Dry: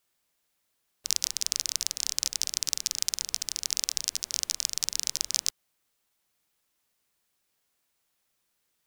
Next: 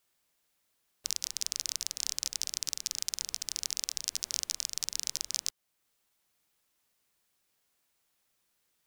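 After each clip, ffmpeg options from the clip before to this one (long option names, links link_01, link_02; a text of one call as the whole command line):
ffmpeg -i in.wav -af "alimiter=limit=-9.5dB:level=0:latency=1:release=445" out.wav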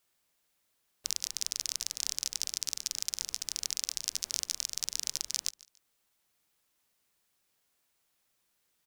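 ffmpeg -i in.wav -af "aecho=1:1:144|288:0.0841|0.0252" out.wav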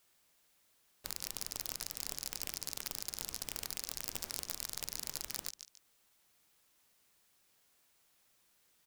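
ffmpeg -i in.wav -af "aeval=exprs='(mod(17.8*val(0)+1,2)-1)/17.8':channel_layout=same,volume=4.5dB" out.wav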